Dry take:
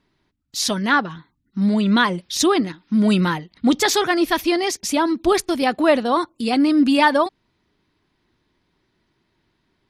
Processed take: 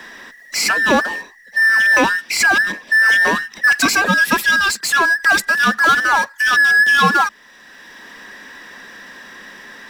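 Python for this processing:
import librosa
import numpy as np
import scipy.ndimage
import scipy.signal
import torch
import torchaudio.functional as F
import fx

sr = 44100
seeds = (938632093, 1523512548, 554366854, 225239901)

y = fx.band_invert(x, sr, width_hz=2000)
y = fx.low_shelf_res(y, sr, hz=160.0, db=-8.5, q=3.0)
y = fx.power_curve(y, sr, exponent=0.7)
y = fx.band_squash(y, sr, depth_pct=40)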